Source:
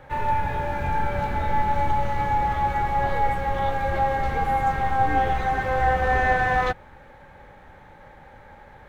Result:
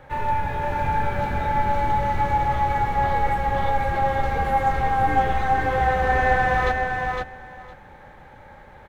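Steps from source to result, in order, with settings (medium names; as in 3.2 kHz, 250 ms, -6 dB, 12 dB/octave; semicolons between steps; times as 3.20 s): feedback delay 509 ms, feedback 15%, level -4 dB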